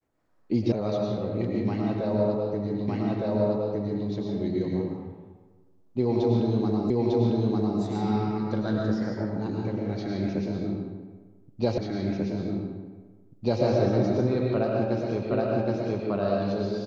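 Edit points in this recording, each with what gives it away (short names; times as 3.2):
0.72 sound cut off
2.88 repeat of the last 1.21 s
6.9 repeat of the last 0.9 s
11.78 repeat of the last 1.84 s
15.31 repeat of the last 0.77 s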